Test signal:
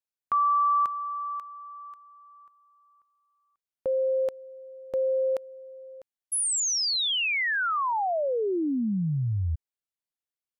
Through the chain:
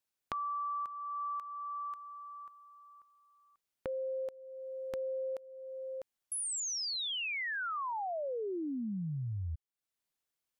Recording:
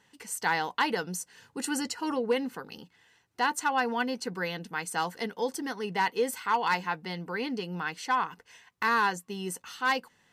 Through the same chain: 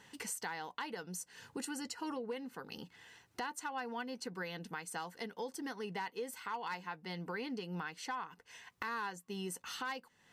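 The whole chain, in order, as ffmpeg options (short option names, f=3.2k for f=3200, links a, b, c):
-af "acompressor=threshold=-40dB:ratio=12:attack=2.3:release=761:knee=6:detection=peak,volume=5dB"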